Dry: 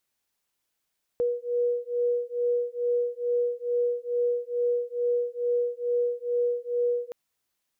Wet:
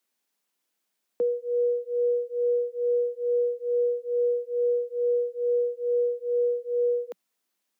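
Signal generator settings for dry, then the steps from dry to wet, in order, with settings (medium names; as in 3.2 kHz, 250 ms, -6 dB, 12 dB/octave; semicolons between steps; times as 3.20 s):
beating tones 482 Hz, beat 2.3 Hz, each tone -27 dBFS 5.92 s
steep high-pass 180 Hz 72 dB/octave; bass shelf 320 Hz +4 dB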